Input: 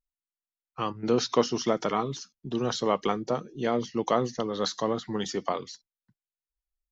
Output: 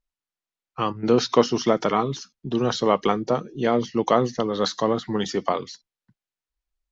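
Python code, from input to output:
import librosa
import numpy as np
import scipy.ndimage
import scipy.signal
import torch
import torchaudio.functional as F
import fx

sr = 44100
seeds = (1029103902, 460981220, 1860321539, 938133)

y = fx.air_absorb(x, sr, metres=62.0)
y = F.gain(torch.from_numpy(y), 6.0).numpy()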